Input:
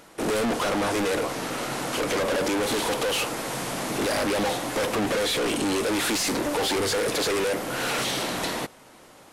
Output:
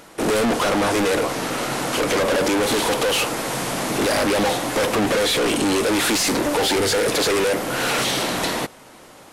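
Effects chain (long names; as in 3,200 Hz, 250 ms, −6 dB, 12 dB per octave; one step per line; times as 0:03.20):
0:06.61–0:07.06: notch filter 1,100 Hz, Q 8.4
level +5.5 dB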